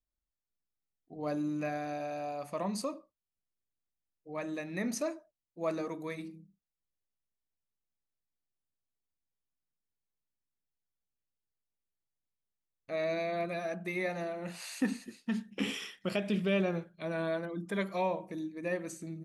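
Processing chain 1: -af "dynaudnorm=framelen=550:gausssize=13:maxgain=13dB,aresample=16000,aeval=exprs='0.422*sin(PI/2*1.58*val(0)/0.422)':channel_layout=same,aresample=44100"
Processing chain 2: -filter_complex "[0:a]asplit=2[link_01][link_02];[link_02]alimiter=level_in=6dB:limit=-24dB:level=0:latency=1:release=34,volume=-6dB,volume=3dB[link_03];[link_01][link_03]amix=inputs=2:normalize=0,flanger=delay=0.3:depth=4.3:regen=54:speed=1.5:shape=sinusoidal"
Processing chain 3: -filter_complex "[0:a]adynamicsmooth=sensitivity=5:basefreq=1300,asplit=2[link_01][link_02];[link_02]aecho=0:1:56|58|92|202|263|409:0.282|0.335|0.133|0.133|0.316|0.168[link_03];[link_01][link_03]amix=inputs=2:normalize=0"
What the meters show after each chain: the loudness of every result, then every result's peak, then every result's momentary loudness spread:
−19.0, −34.5, −35.5 LKFS; −7.5, −19.0, −18.5 dBFS; 13, 6, 9 LU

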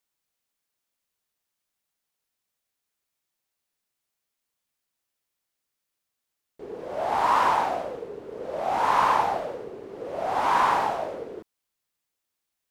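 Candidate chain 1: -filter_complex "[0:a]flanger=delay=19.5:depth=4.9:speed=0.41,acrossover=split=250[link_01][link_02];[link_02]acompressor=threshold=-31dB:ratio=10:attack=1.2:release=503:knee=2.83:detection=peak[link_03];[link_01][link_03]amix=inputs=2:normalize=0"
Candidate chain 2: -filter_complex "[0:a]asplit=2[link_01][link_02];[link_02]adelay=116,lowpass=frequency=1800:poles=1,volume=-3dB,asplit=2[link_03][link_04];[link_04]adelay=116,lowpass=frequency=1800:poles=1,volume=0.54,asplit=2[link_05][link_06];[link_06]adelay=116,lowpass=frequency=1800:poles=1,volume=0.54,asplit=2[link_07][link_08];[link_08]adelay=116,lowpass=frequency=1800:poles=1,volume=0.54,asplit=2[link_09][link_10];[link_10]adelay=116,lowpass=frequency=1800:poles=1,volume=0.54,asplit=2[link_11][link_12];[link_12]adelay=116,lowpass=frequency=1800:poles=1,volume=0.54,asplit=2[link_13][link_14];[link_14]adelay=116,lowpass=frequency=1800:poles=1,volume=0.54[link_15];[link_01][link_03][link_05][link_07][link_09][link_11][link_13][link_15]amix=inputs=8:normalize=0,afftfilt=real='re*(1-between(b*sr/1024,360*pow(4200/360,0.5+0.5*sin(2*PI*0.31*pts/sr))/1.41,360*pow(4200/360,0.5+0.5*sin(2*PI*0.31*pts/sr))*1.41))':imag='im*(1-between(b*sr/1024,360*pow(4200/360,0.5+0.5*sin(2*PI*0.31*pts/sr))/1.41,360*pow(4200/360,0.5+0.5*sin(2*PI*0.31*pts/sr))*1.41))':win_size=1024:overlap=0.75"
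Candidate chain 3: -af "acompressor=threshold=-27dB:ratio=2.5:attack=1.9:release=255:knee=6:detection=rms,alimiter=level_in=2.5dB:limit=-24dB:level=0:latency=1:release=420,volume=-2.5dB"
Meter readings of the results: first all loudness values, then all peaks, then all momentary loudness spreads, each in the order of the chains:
−38.5, −23.5, −37.0 LKFS; −26.0, −7.5, −26.5 dBFS; 6, 17, 5 LU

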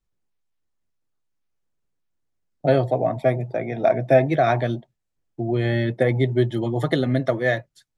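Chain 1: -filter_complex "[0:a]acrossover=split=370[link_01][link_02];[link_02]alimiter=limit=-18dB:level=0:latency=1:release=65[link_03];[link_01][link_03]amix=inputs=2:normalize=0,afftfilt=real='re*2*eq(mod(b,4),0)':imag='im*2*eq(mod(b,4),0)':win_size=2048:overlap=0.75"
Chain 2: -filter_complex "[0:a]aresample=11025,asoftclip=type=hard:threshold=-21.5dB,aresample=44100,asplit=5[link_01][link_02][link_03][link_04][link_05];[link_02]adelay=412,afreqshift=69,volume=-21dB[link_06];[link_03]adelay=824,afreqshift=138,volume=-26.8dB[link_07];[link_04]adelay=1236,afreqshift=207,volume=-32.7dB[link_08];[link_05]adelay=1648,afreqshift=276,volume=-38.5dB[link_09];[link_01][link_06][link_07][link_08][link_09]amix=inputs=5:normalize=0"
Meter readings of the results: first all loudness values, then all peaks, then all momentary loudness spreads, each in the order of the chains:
−27.5, −26.5 LKFS; −12.5, −18.5 dBFS; 7, 8 LU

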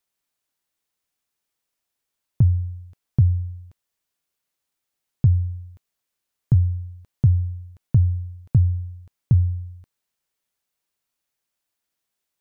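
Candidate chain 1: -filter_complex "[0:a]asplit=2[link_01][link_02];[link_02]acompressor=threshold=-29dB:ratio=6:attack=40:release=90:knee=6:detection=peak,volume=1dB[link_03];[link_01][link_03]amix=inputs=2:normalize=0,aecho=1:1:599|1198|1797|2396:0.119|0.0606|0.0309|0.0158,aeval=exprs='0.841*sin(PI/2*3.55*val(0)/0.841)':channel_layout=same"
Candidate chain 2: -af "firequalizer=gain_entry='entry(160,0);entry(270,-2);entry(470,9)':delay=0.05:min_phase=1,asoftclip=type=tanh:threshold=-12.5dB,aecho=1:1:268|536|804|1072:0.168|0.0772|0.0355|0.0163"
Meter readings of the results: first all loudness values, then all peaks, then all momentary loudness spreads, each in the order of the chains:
−11.0, −25.0 LKFS; −1.5, −13.0 dBFS; 19, 16 LU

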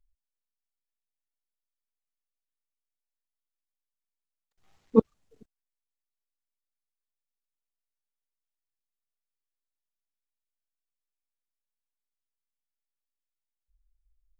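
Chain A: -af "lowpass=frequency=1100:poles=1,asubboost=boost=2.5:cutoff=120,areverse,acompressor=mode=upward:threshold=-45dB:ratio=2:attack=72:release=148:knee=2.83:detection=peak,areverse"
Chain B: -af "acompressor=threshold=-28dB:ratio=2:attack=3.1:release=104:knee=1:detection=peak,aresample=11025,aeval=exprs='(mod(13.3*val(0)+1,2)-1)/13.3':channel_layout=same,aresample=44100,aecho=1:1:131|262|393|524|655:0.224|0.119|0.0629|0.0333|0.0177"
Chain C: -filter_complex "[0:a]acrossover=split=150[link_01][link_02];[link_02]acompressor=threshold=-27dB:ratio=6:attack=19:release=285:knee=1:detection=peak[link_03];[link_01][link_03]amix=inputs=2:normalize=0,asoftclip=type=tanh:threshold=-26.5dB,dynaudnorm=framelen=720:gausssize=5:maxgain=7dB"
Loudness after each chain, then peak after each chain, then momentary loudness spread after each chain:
−26.5, −37.5, −31.5 LKFS; −6.5, −19.0, −19.5 dBFS; 0, 18, 10 LU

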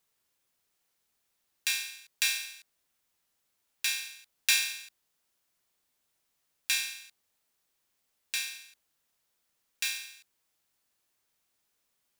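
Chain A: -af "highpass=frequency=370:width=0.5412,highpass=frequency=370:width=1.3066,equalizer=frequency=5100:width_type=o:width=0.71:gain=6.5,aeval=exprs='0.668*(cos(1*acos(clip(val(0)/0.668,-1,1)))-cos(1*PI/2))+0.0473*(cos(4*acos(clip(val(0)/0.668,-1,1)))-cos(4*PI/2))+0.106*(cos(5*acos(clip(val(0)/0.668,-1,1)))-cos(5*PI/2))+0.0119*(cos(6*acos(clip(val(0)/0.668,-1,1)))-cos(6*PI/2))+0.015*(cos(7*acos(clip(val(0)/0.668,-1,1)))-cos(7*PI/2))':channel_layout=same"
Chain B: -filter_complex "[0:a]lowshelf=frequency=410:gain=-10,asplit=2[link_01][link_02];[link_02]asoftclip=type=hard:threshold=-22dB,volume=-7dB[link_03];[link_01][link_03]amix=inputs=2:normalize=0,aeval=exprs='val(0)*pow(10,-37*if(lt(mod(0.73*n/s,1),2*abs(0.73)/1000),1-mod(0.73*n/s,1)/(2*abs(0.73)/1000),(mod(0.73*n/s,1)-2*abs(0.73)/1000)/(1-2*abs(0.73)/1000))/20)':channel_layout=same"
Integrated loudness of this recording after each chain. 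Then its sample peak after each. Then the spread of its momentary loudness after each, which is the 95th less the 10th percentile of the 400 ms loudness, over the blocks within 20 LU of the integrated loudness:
−24.5, −37.5 LKFS; −2.5, −14.0 dBFS; 18, 16 LU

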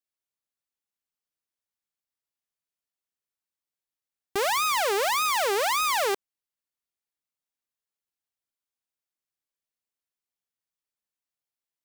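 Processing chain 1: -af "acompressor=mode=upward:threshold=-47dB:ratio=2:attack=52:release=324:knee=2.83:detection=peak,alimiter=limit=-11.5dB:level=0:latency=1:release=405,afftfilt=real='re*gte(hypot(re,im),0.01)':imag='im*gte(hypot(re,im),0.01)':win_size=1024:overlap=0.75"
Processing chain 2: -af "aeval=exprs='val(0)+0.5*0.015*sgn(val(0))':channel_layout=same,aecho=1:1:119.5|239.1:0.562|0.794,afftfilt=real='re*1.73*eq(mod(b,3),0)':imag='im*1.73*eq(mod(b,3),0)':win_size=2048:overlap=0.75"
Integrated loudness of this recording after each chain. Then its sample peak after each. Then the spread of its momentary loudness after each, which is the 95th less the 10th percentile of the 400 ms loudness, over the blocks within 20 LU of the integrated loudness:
−25.0, −23.5 LKFS; −15.5, −11.5 dBFS; 9, 20 LU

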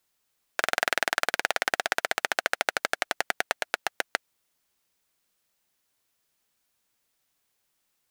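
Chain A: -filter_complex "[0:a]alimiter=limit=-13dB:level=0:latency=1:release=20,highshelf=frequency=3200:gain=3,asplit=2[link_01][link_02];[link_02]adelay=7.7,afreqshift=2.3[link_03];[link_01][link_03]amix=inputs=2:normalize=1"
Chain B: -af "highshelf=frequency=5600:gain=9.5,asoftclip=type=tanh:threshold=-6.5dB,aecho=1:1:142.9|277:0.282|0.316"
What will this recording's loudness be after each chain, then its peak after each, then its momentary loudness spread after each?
−39.5, −28.5 LKFS; −17.0, −6.5 dBFS; 5, 8 LU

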